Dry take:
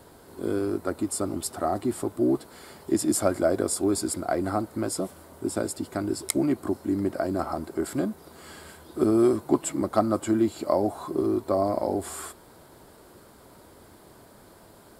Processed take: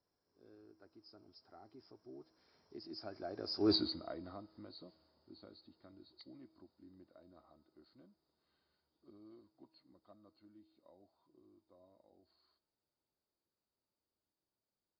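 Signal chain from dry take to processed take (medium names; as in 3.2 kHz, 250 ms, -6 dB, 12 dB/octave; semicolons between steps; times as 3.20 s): knee-point frequency compression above 3.8 kHz 4:1; Doppler pass-by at 3.73 s, 20 m/s, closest 1.2 m; in parallel at -3 dB: compression, threshold -52 dBFS, peak gain reduction 26.5 dB; on the sum: feedback comb 320 Hz, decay 0.96 s, mix 50%; trim +1 dB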